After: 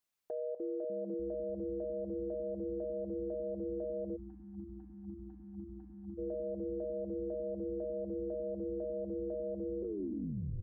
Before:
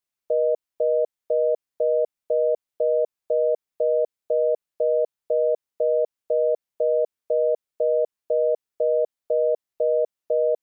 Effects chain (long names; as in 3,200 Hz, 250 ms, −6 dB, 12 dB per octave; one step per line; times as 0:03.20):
turntable brake at the end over 1.02 s
echo with shifted repeats 297 ms, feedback 54%, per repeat −140 Hz, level −3.5 dB
downward compressor 6 to 1, threshold −32 dBFS, peak gain reduction 14.5 dB
four-comb reverb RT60 1.6 s, combs from 29 ms, DRR 17.5 dB
brickwall limiter −32 dBFS, peak gain reduction 11 dB
time-frequency box erased 0:04.16–0:06.18, 330–740 Hz